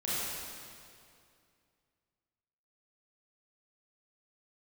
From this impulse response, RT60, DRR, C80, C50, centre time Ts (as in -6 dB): 2.4 s, -10.0 dB, -3.0 dB, -5.5 dB, 0.173 s